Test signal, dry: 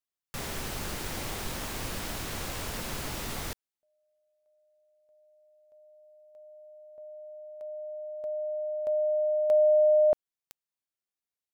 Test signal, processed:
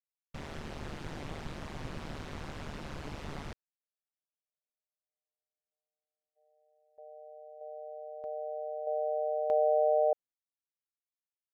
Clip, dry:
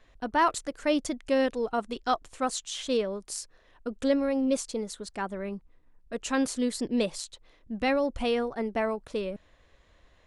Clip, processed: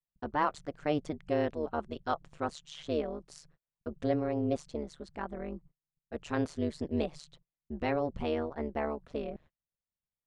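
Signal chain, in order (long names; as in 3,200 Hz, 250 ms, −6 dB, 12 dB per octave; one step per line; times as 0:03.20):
noise gate −49 dBFS, range −37 dB
amplitude modulation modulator 150 Hz, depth 90%
head-to-tape spacing loss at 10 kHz 20 dB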